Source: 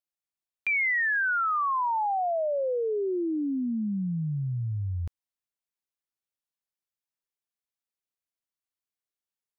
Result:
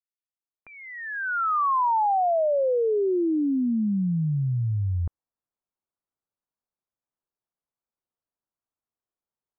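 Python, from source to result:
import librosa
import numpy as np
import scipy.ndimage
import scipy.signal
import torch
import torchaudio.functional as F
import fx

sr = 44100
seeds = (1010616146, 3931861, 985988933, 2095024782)

y = fx.fade_in_head(x, sr, length_s=1.42)
y = scipy.signal.sosfilt(scipy.signal.butter(4, 1300.0, 'lowpass', fs=sr, output='sos'), y)
y = F.gain(torch.from_numpy(y), 5.0).numpy()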